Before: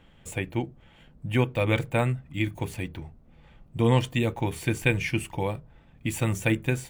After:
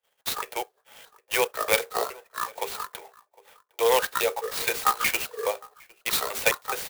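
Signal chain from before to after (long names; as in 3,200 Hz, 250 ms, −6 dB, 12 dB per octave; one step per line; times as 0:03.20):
pitch shifter gated in a rhythm −11.5 semitones, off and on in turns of 210 ms
Butterworth high-pass 420 Hz 72 dB per octave
parametric band 4,200 Hz +10 dB 0.63 octaves
in parallel at −5 dB: soft clipping −26 dBFS, distortion −9 dB
on the sum: noise gate −54 dBFS, range −35 dB
slap from a distant wall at 130 metres, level −23 dB
on a send at −22.5 dB: convolution reverb, pre-delay 3 ms
on the sum: converter with an unsteady clock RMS 0.047 ms
level +3 dB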